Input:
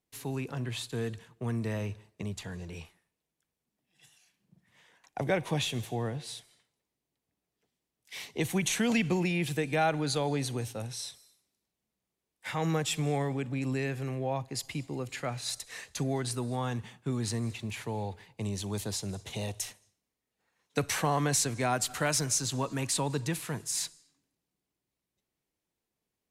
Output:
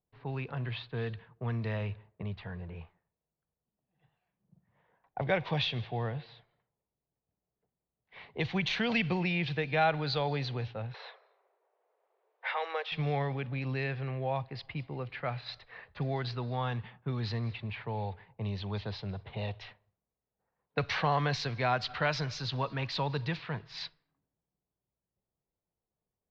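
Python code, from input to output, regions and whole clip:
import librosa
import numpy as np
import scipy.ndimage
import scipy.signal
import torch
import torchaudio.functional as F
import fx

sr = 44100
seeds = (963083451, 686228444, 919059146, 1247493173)

y = fx.chain(x, sr, fx.steep_highpass(hz=410.0, slope=48),
    fx.band_squash(depth_pct=70), at=(10.94, 12.92))
y = fx.env_lowpass(y, sr, base_hz=790.0, full_db=-25.0)
y = scipy.signal.sosfilt(scipy.signal.butter(8, 4700.0, 'lowpass', fs=sr, output='sos'), y)
y = fx.peak_eq(y, sr, hz=290.0, db=-9.5, octaves=1.0)
y = y * librosa.db_to_amplitude(1.5)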